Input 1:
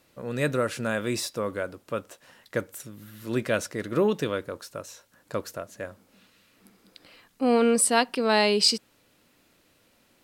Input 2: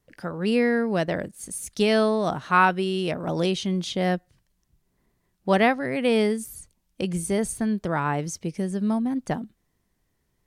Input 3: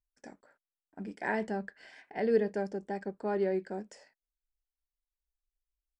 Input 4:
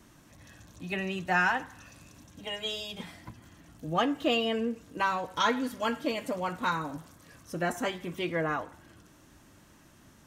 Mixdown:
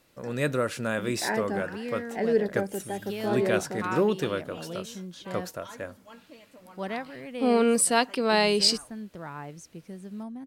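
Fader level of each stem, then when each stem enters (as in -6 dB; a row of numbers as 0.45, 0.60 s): -1.0, -14.0, +3.0, -19.5 dB; 0.00, 1.30, 0.00, 0.25 s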